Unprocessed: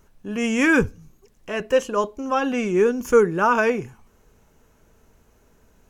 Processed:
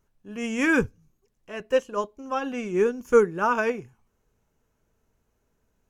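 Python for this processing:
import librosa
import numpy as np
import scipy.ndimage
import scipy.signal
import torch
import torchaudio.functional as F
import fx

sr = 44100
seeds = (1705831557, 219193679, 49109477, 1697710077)

y = fx.peak_eq(x, sr, hz=120.0, db=4.0, octaves=0.39)
y = fx.upward_expand(y, sr, threshold_db=-37.0, expansion=1.5)
y = y * 10.0 ** (-1.5 / 20.0)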